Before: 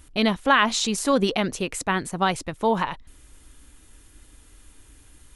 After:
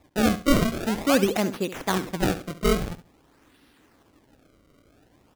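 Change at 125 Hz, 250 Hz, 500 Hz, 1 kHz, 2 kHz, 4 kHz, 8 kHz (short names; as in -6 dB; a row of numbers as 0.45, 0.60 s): +3.5, +1.5, 0.0, -6.5, -5.5, -5.0, -4.0 dB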